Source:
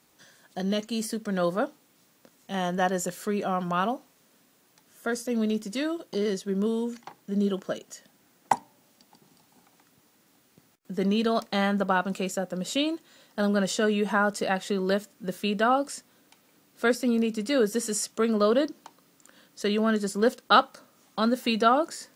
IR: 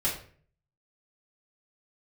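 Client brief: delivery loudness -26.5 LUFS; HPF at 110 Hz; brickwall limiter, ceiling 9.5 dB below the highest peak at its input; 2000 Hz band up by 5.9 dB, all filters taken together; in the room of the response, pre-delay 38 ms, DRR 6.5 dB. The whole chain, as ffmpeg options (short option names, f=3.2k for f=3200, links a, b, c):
-filter_complex "[0:a]highpass=110,equalizer=f=2k:t=o:g=8.5,alimiter=limit=-12.5dB:level=0:latency=1,asplit=2[a][b];[1:a]atrim=start_sample=2205,adelay=38[c];[b][c]afir=irnorm=-1:irlink=0,volume=-14.5dB[d];[a][d]amix=inputs=2:normalize=0,volume=-0.5dB"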